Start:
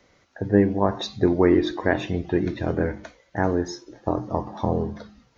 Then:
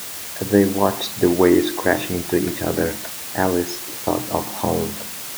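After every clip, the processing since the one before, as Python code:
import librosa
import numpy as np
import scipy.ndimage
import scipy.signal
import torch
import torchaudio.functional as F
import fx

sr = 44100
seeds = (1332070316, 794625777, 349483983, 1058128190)

y = fx.low_shelf(x, sr, hz=140.0, db=-8.5)
y = fx.quant_dither(y, sr, seeds[0], bits=6, dither='triangular')
y = scipy.signal.sosfilt(scipy.signal.butter(2, 67.0, 'highpass', fs=sr, output='sos'), y)
y = y * 10.0 ** (4.5 / 20.0)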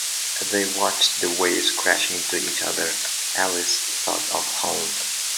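y = fx.weighting(x, sr, curve='ITU-R 468')
y = y * 10.0 ** (-1.0 / 20.0)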